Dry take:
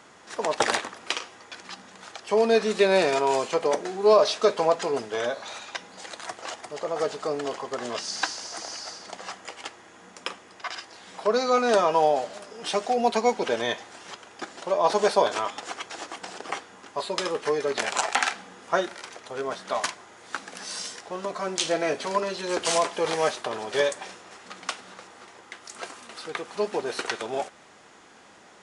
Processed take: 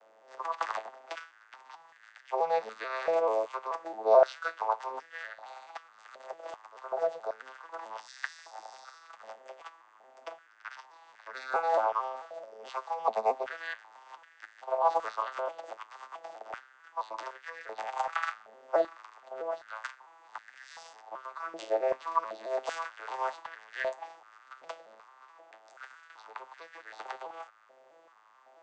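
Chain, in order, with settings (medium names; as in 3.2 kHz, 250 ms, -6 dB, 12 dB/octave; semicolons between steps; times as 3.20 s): vocoder on a broken chord minor triad, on A2, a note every 218 ms; step-sequenced high-pass 2.6 Hz 590–1700 Hz; trim -8.5 dB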